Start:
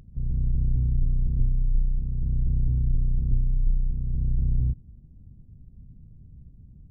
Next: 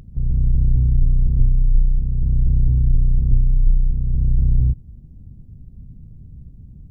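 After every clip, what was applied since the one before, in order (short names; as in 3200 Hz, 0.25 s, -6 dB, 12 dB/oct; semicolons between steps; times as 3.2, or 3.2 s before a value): dynamic EQ 240 Hz, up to -3 dB, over -45 dBFS, Q 0.98; gain +8 dB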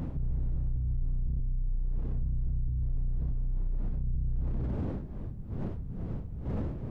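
wind noise 200 Hz -29 dBFS; compressor, threshold -19 dBFS, peak gain reduction 11.5 dB; limiter -25.5 dBFS, peak gain reduction 12.5 dB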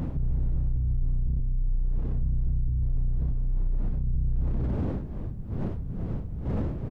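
echo 0.285 s -21.5 dB; gain +4.5 dB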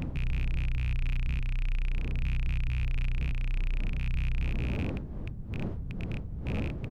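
rattling part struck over -26 dBFS, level -25 dBFS; gain -3.5 dB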